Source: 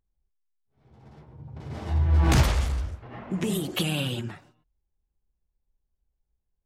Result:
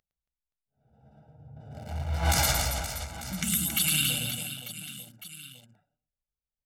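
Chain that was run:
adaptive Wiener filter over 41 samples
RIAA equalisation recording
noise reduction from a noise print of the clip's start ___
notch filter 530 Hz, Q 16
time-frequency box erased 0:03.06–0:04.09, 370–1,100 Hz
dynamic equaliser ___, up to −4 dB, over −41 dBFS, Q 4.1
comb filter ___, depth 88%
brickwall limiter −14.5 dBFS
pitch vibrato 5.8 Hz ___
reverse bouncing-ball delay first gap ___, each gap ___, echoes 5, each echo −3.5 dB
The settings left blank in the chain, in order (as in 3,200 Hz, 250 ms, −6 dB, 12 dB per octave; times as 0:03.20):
8 dB, 3,000 Hz, 1.4 ms, 6.1 cents, 110 ms, 1.5×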